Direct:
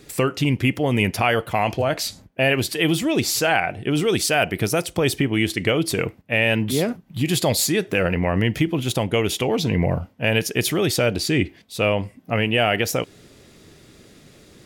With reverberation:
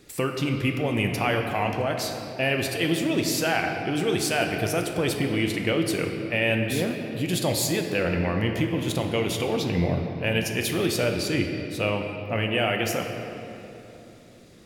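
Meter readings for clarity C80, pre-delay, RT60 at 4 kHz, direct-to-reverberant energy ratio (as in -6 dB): 5.5 dB, 3 ms, 1.9 s, 3.0 dB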